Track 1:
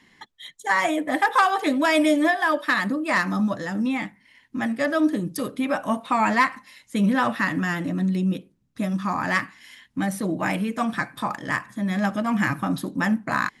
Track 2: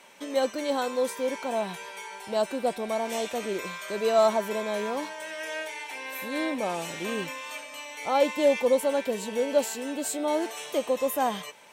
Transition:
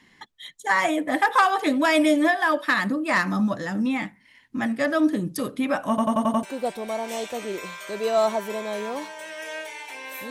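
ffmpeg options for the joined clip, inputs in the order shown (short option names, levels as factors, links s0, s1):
-filter_complex "[0:a]apad=whole_dur=10.3,atrim=end=10.3,asplit=6[s0][s1][s2][s3][s4][s5];[s0]atrim=end=5.982[s6];[s1]atrim=start=5.888:end=5.982[s7];[s2]atrim=start=5.888:end=5.982[s8];[s3]atrim=start=5.888:end=5.982[s9];[s4]atrim=start=5.888:end=5.982[s10];[s5]atrim=start=5.888:end=5.982[s11];[1:a]atrim=start=2.438:end=6.31[s12];[s6][s7]acrossfade=d=0.004:c1=hsin:c2=hsin[s13];[s13][s8]acrossfade=d=0.004:c1=hsin:c2=hsin[s14];[s14][s9]acrossfade=d=0.004:c1=hsin:c2=hsin[s15];[s15][s10]acrossfade=d=0.004:c1=hsin:c2=hsin[s16];[s16][s11]acrossfade=d=0.004:c1=hsin:c2=hsin[s17];[s17][s12]acrossfade=d=0.004:c1=hsin:c2=hsin"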